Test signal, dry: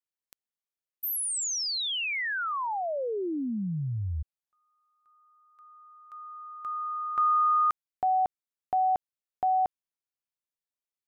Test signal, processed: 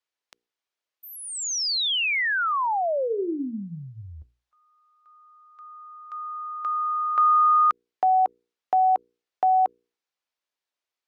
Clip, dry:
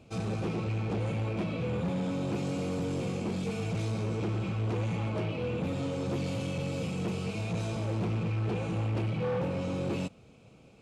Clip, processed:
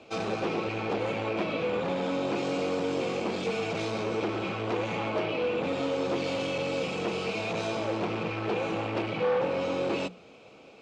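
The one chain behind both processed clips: three-band isolator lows -19 dB, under 280 Hz, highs -22 dB, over 6300 Hz; notches 60/120/180/240/300/360/420/480 Hz; in parallel at -1.5 dB: compressor 6:1, threshold -37 dBFS; on the sum: gain +4 dB; Opus 64 kbps 48000 Hz

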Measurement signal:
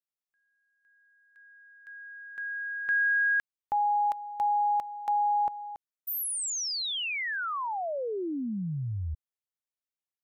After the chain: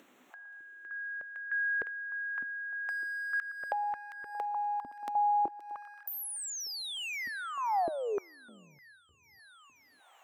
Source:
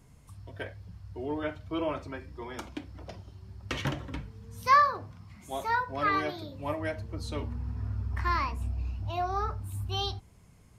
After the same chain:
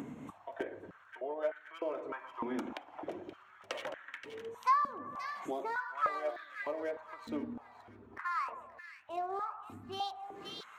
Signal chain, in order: Wiener smoothing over 9 samples; in parallel at -3 dB: upward compressor, threshold -31 dBFS; on the sum: split-band echo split 1600 Hz, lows 0.115 s, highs 0.526 s, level -14.5 dB; compressor 6:1, threshold -40 dBFS; stepped high-pass 3.3 Hz 260–1700 Hz; gain +1 dB

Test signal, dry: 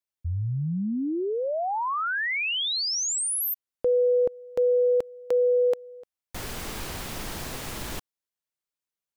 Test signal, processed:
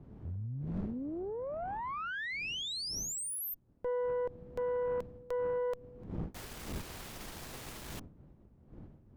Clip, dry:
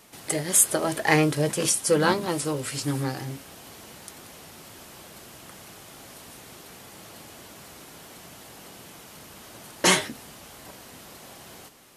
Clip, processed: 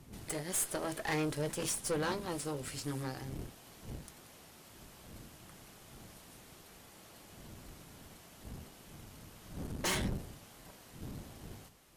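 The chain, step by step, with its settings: wind noise 190 Hz -37 dBFS; tube stage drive 21 dB, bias 0.6; gain -8 dB

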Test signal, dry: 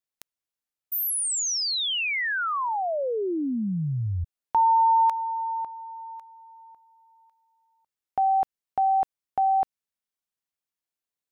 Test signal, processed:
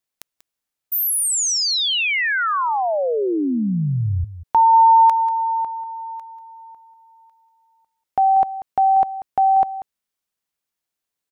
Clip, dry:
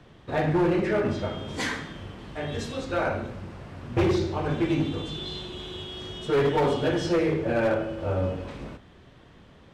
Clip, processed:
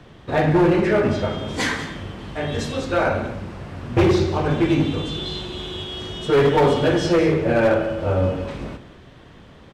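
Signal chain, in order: echo 0.189 s -14 dB; gain +6.5 dB

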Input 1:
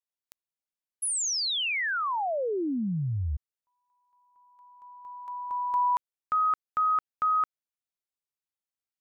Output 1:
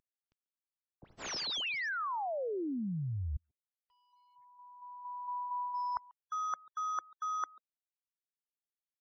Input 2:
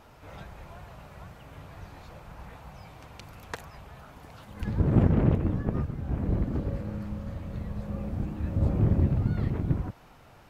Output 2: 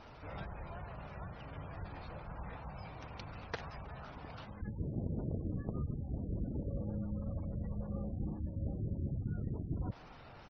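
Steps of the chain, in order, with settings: CVSD 32 kbps; reverse; compressor 12:1, threshold -34 dBFS; reverse; speakerphone echo 0.14 s, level -22 dB; spectral gate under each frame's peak -25 dB strong

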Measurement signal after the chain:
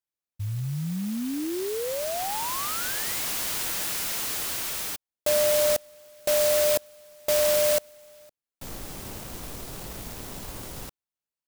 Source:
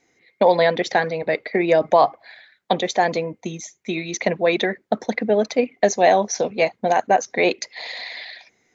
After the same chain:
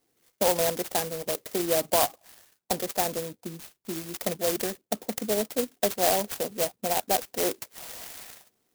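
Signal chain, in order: clock jitter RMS 0.15 ms; gain -8.5 dB

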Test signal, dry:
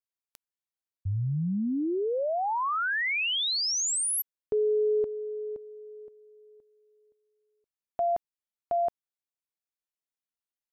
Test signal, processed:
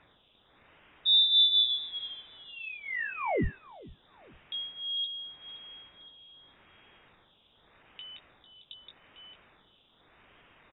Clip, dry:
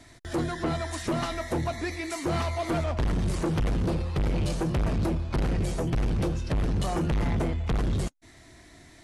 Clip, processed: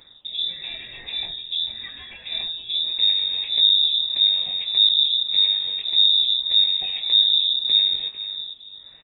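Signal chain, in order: low shelf 270 Hz +7 dB; fixed phaser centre 2300 Hz, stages 6; doubler 19 ms -6 dB; on a send: feedback echo 0.449 s, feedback 18%, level -13 dB; on the sum: dynamic EQ 640 Hz, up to -8 dB, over -46 dBFS, Q 1.1; resonator 370 Hz, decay 0.35 s, harmonics odd, mix 40%; in parallel at -4.5 dB: requantised 8-bit, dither triangular; on the sum: phaser stages 2, 0.84 Hz, lowest notch 140–1800 Hz; HPF 51 Hz; inverted band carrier 3700 Hz

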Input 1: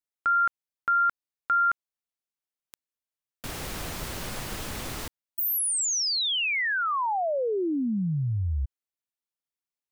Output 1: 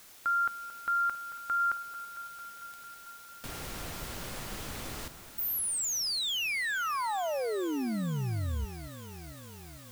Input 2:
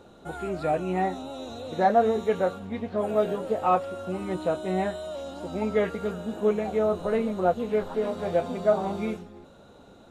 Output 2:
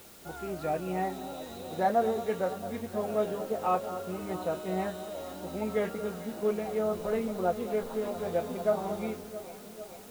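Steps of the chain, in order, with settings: echo with dull and thin repeats by turns 0.224 s, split 1500 Hz, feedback 83%, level -12.5 dB; requantised 8-bit, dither triangular; gain -5.5 dB

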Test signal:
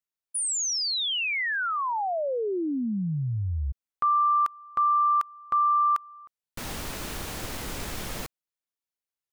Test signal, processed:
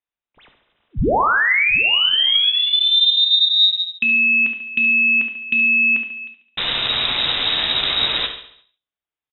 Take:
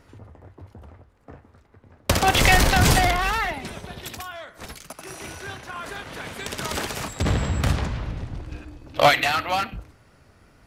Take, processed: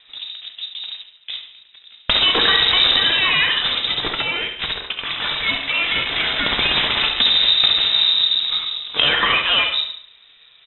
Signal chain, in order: de-hum 65.4 Hz, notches 13; sample leveller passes 2; compressor 12:1, threshold -22 dBFS; frequency shift +24 Hz; feedback echo 70 ms, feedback 51%, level -11.5 dB; non-linear reverb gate 0.19 s falling, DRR 6 dB; inverted band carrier 3800 Hz; gain +7 dB

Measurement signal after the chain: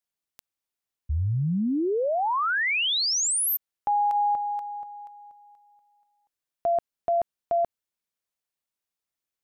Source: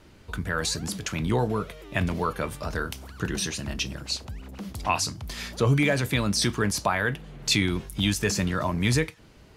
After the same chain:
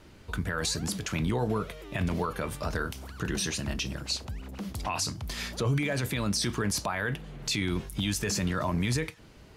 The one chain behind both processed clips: limiter -19.5 dBFS

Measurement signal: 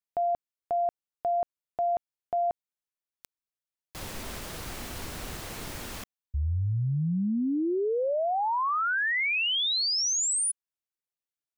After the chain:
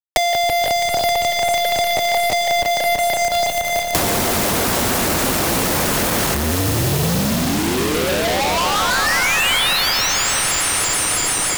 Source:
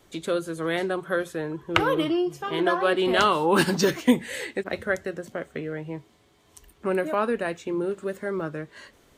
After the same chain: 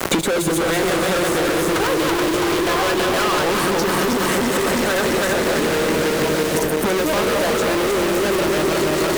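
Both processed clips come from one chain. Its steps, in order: regenerating reverse delay 0.165 s, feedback 65%, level -2 dB; HPF 150 Hz 6 dB/oct; bell 2700 Hz -5.5 dB 2.5 oct; harmonic-percussive split percussive +5 dB; compressor 6:1, threshold -32 dBFS; fuzz box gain 51 dB, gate -54 dBFS; bit-crush 5-bit; on a send: swelling echo 89 ms, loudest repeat 5, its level -17.5 dB; on the sum: three-band squash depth 100%; gain -5 dB

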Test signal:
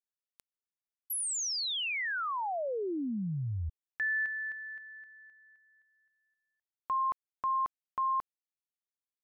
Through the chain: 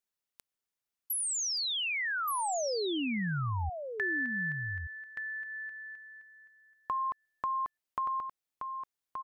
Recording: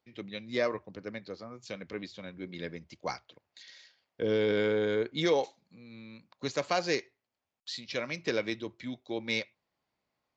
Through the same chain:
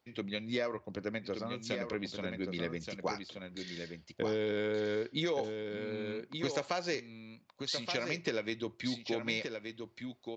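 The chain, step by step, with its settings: compressor 5:1, threshold -36 dBFS; on a send: echo 1.175 s -6.5 dB; on the sum: gain +4.5 dB

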